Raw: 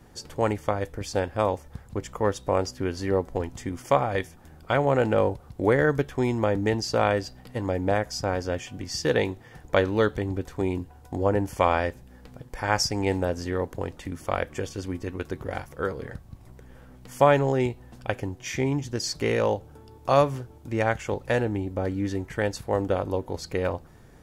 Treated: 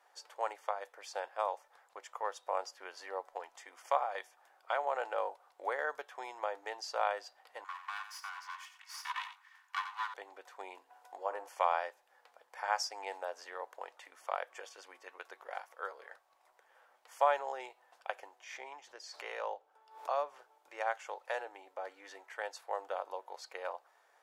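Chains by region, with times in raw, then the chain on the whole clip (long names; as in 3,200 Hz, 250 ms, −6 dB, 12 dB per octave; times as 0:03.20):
0:07.64–0:10.14: lower of the sound and its delayed copy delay 2.7 ms + elliptic high-pass filter 960 Hz + single-tap delay 89 ms −10 dB
0:10.78–0:11.48: hum removal 55.16 Hz, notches 27 + upward compression, threshold −37 dBFS
0:18.44–0:20.39: high-shelf EQ 6,000 Hz −7 dB + two-band tremolo in antiphase 1.7 Hz, depth 50%, crossover 490 Hz + background raised ahead of every attack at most 120 dB per second
whole clip: dynamic equaliser 2,100 Hz, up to −4 dB, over −39 dBFS, Q 1.4; inverse Chebyshev high-pass filter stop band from 210 Hz, stop band 60 dB; spectral tilt −2.5 dB per octave; level −5.5 dB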